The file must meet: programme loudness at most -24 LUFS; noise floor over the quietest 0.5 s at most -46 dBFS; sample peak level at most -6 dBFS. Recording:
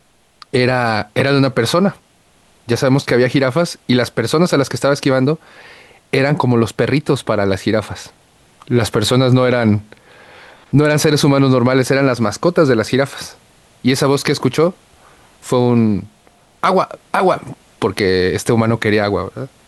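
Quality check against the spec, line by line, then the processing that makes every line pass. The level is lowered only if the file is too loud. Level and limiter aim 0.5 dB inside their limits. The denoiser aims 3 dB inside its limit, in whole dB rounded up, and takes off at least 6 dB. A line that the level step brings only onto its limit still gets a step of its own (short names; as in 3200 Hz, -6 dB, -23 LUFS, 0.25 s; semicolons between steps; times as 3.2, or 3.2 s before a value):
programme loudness -15.5 LUFS: fail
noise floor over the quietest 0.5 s -53 dBFS: OK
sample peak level -2.0 dBFS: fail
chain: gain -9 dB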